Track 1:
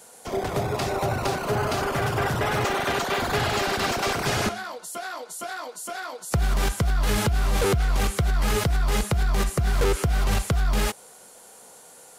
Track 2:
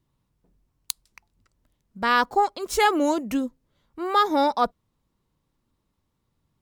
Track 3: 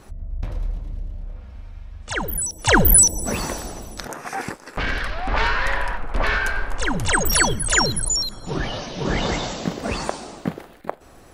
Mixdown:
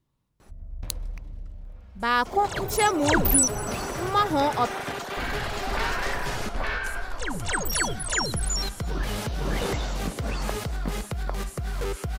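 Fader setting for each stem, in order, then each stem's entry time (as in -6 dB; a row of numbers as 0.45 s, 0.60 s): -8.0 dB, -2.5 dB, -8.0 dB; 2.00 s, 0.00 s, 0.40 s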